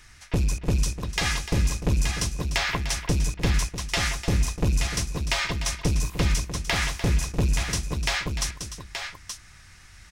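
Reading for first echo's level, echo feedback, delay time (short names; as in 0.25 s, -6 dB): -11.5 dB, no steady repeat, 0.298 s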